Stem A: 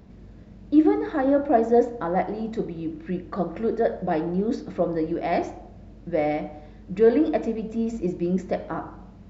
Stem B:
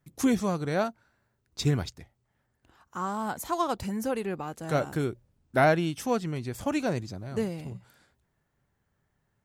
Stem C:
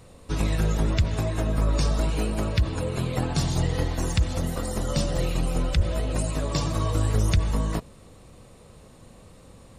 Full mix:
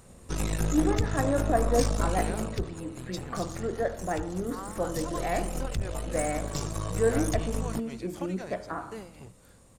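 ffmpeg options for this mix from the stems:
-filter_complex "[0:a]equalizer=f=1400:t=o:w=1.5:g=9,volume=0.355[s0];[1:a]lowshelf=f=320:g=-12,acompressor=threshold=0.0178:ratio=6,tremolo=f=3.9:d=0.71,adelay=1550,volume=1[s1];[2:a]highshelf=f=5400:t=q:w=1.5:g=6,aeval=exprs='(tanh(11.2*val(0)+0.8)-tanh(0.8))/11.2':c=same,volume=2.24,afade=t=out:st=2.18:d=0.63:silence=0.298538,afade=t=in:st=4.75:d=0.63:silence=0.446684[s2];[s0][s1][s2]amix=inputs=3:normalize=0"

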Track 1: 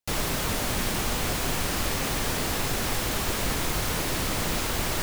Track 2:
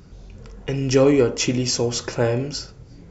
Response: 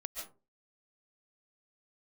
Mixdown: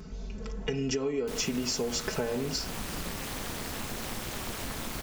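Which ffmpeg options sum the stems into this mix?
-filter_complex "[0:a]tremolo=f=220:d=0.857,adelay=1200,volume=0.631[s0];[1:a]aecho=1:1:4.6:0.91,acompressor=threshold=0.1:ratio=6,volume=1[s1];[s0][s1]amix=inputs=2:normalize=0,acompressor=threshold=0.0282:ratio=2.5"

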